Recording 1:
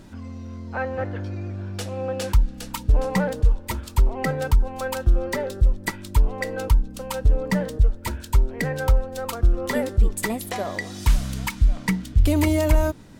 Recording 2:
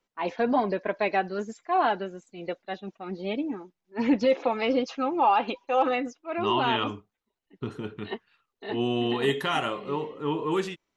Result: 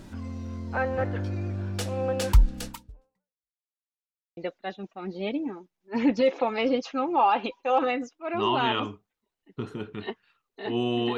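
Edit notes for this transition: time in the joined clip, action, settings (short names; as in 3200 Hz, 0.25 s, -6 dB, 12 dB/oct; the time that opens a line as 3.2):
recording 1
2.66–3.51 fade out exponential
3.51–4.37 mute
4.37 switch to recording 2 from 2.41 s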